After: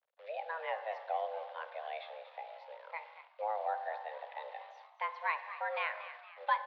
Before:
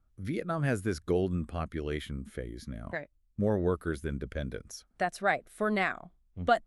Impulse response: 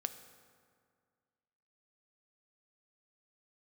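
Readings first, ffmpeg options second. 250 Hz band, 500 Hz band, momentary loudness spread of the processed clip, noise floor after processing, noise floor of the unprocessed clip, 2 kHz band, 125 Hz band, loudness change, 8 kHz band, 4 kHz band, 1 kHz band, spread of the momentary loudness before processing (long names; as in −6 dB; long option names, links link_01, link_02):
below −40 dB, −9.0 dB, 12 LU, −62 dBFS, −69 dBFS, −5.0 dB, below −40 dB, −7.0 dB, below −30 dB, −6.5 dB, −1.5 dB, 12 LU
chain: -filter_complex "[1:a]atrim=start_sample=2205,afade=type=out:start_time=0.39:duration=0.01,atrim=end_sample=17640[link_01];[0:a][link_01]afir=irnorm=-1:irlink=0,acrusher=bits=9:dc=4:mix=0:aa=0.000001,highpass=frequency=200:width_type=q:width=0.5412,highpass=frequency=200:width_type=q:width=1.307,lowpass=frequency=3500:width_type=q:width=0.5176,lowpass=frequency=3500:width_type=q:width=0.7071,lowpass=frequency=3500:width_type=q:width=1.932,afreqshift=320,asplit=6[link_02][link_03][link_04][link_05][link_06][link_07];[link_03]adelay=233,afreqshift=94,volume=-13.5dB[link_08];[link_04]adelay=466,afreqshift=188,volume=-19.9dB[link_09];[link_05]adelay=699,afreqshift=282,volume=-26.3dB[link_10];[link_06]adelay=932,afreqshift=376,volume=-32.6dB[link_11];[link_07]adelay=1165,afreqshift=470,volume=-39dB[link_12];[link_02][link_08][link_09][link_10][link_11][link_12]amix=inputs=6:normalize=0,volume=-6dB"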